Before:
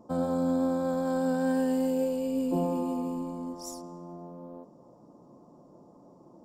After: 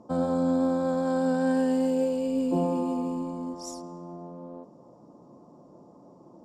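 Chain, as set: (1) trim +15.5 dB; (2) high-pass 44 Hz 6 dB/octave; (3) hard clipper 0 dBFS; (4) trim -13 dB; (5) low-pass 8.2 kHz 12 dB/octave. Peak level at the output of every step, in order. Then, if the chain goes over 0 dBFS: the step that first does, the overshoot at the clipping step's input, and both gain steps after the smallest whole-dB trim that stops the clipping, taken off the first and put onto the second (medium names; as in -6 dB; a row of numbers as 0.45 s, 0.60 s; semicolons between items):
-2.0 dBFS, -2.5 dBFS, -2.5 dBFS, -15.5 dBFS, -15.5 dBFS; nothing clips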